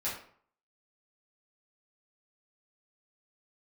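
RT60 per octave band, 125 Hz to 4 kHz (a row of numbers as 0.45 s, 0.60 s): 0.55 s, 0.55 s, 0.55 s, 0.55 s, 0.45 s, 0.35 s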